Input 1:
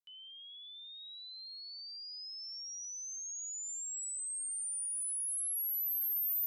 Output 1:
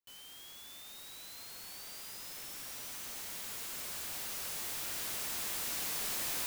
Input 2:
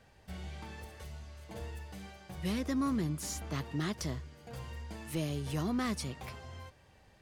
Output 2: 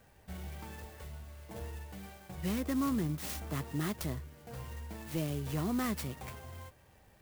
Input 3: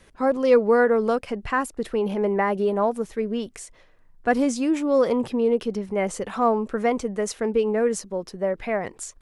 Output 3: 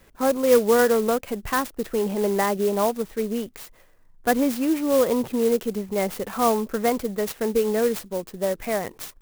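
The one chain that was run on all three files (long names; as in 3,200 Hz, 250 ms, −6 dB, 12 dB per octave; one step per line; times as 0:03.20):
converter with an unsteady clock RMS 0.051 ms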